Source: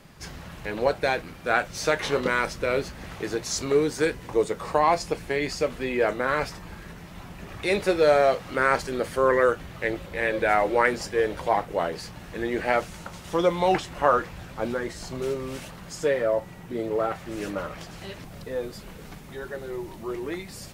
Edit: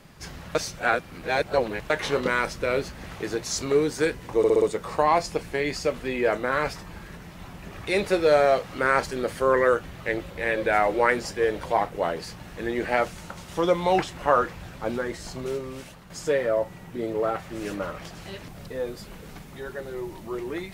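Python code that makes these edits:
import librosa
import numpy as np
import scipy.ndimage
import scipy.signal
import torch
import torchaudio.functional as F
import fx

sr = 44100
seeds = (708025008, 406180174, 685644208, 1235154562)

y = fx.edit(x, sr, fx.reverse_span(start_s=0.55, length_s=1.35),
    fx.stutter(start_s=4.38, slice_s=0.06, count=5),
    fx.fade_out_to(start_s=15.04, length_s=0.82, floor_db=-7.5), tone=tone)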